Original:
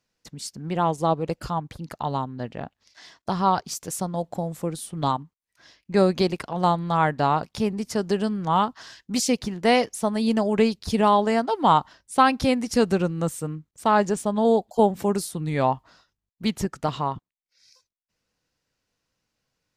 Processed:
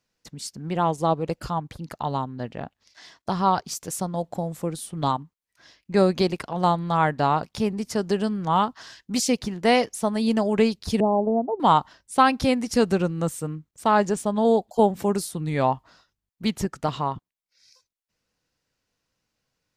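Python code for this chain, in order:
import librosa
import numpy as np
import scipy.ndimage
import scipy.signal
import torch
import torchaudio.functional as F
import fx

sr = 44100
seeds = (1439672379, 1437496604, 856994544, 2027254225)

y = fx.steep_lowpass(x, sr, hz=790.0, slope=36, at=(11.0, 11.6))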